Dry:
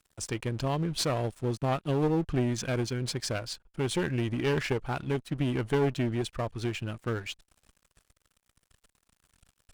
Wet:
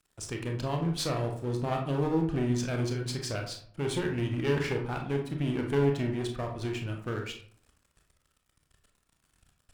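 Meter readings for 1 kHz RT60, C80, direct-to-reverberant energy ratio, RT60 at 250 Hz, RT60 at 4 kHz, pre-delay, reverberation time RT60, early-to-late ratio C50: 0.50 s, 11.5 dB, 2.0 dB, 0.65 s, 0.30 s, 25 ms, 0.55 s, 6.5 dB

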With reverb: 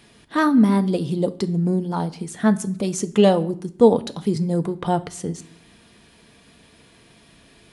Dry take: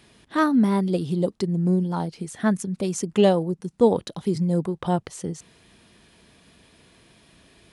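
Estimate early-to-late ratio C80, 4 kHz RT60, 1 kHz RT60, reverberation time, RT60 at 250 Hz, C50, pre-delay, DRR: 22.0 dB, 0.45 s, 0.55 s, 0.60 s, 0.85 s, 18.0 dB, 4 ms, 10.0 dB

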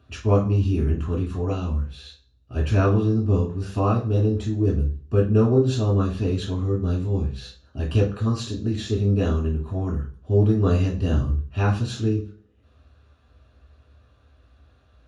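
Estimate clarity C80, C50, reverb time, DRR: 14.5 dB, 9.0 dB, 0.45 s, -4.0 dB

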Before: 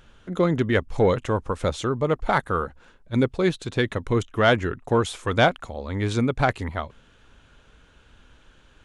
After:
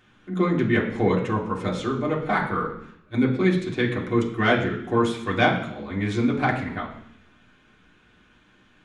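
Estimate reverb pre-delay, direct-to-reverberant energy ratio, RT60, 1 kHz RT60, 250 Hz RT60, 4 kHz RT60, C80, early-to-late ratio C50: 3 ms, -4.0 dB, 0.70 s, 0.70 s, 0.85 s, 0.95 s, 10.5 dB, 8.0 dB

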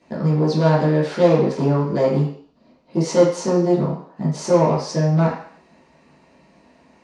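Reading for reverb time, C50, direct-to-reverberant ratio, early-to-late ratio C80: 0.55 s, 4.5 dB, -11.0 dB, 8.0 dB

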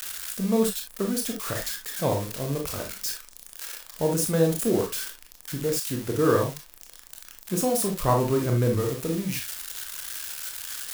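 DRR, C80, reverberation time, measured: 1.5 dB, 16.0 dB, not exponential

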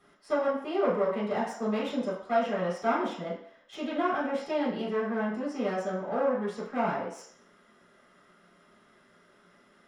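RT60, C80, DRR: 0.65 s, 8.0 dB, -8.0 dB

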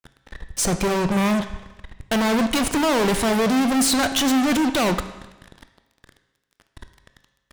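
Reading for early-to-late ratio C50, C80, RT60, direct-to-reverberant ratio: 11.0 dB, 12.5 dB, 1.1 s, 9.0 dB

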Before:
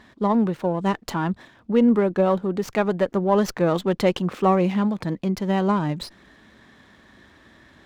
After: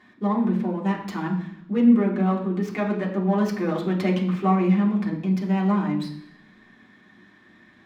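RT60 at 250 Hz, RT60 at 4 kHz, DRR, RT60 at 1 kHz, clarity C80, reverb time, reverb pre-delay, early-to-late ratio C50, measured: 0.85 s, 0.95 s, -4.0 dB, 0.70 s, 10.5 dB, 0.70 s, 3 ms, 8.0 dB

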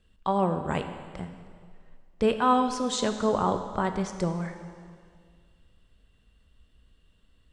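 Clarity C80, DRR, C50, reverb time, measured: 9.5 dB, 7.0 dB, 8.5 dB, 2.0 s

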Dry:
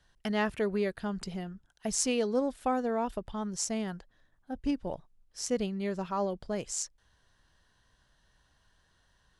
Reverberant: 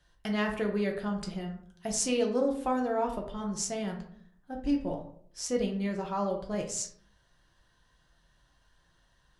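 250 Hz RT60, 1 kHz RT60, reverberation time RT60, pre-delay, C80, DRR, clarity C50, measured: 0.80 s, 0.55 s, 0.60 s, 3 ms, 12.5 dB, 1.0 dB, 8.0 dB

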